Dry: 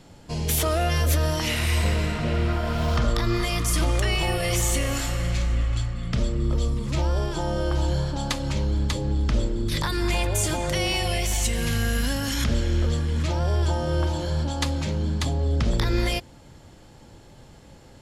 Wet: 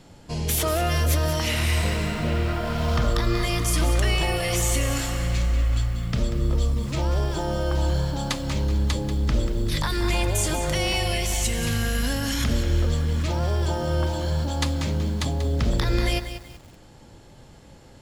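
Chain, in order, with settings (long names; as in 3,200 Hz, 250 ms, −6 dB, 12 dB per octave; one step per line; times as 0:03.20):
feedback echo at a low word length 188 ms, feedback 35%, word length 7 bits, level −10 dB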